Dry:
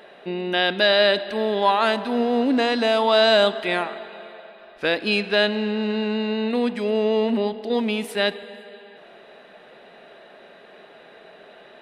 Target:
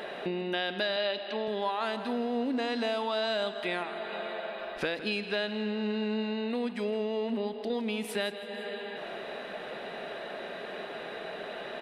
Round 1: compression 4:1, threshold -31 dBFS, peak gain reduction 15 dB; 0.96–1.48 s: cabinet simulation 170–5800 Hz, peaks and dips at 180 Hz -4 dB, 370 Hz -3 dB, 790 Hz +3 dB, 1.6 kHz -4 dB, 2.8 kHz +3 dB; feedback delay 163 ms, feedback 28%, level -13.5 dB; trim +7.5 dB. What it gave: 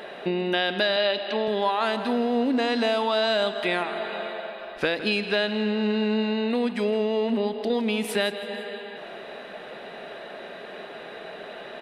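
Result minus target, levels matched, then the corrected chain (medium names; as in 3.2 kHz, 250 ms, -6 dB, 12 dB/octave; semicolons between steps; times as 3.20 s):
compression: peak gain reduction -7 dB
compression 4:1, threshold -40.5 dBFS, peak gain reduction 22 dB; 0.96–1.48 s: cabinet simulation 170–5800 Hz, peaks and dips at 180 Hz -4 dB, 370 Hz -3 dB, 790 Hz +3 dB, 1.6 kHz -4 dB, 2.8 kHz +3 dB; feedback delay 163 ms, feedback 28%, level -13.5 dB; trim +7.5 dB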